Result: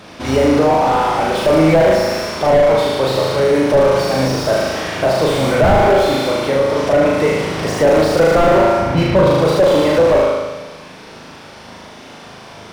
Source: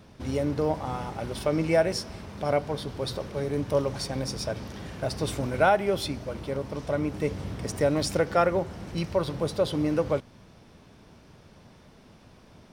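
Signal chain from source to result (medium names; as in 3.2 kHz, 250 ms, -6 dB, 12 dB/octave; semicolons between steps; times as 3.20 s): 8.78–9.27 s: tone controls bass +11 dB, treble -15 dB; on a send: flutter echo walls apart 6.5 m, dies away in 1.1 s; on the sum: overdrive pedal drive 19 dB, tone 5.7 kHz, clips at -5 dBFS; slew-rate limiter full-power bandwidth 120 Hz; trim +5.5 dB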